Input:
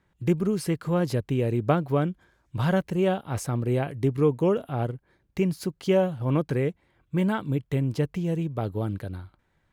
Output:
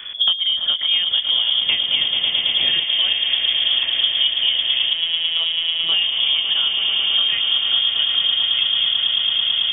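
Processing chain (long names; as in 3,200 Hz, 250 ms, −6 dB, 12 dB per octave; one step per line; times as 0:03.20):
low-shelf EQ 69 Hz +11 dB
echo that builds up and dies away 110 ms, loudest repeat 8, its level −10 dB
voice inversion scrambler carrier 3,400 Hz
0:01.61–0:02.84: low-shelf EQ 500 Hz +12 dB
0:04.93–0:05.92: phases set to zero 165 Hz
multiband upward and downward compressor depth 100%
level +1 dB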